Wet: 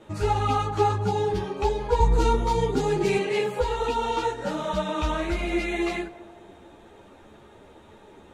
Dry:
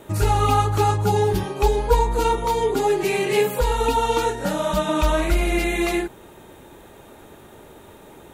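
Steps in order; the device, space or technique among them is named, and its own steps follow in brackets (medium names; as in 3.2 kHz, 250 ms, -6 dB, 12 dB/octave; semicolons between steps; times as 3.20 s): 2.00–3.18 s: tone controls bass +14 dB, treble +6 dB; string-machine ensemble chorus (three-phase chorus; low-pass 5.9 kHz 12 dB/octave); band-passed feedback delay 207 ms, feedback 67%, band-pass 540 Hz, level -14.5 dB; trim -2 dB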